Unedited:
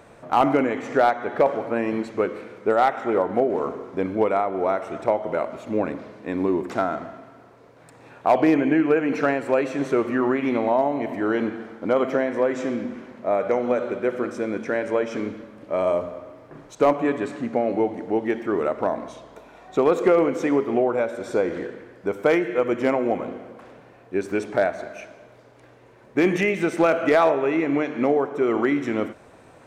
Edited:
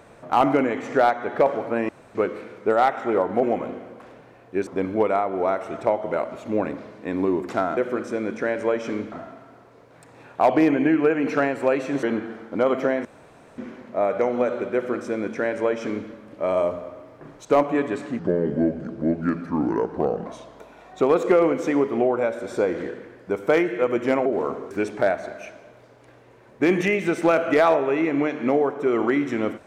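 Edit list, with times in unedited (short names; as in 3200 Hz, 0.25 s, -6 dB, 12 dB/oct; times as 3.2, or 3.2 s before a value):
1.89–2.15 room tone
3.43–3.88 swap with 23.02–24.26
9.89–11.33 cut
12.35–12.88 room tone
14.04–15.39 copy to 6.98
17.49–19.02 speed 74%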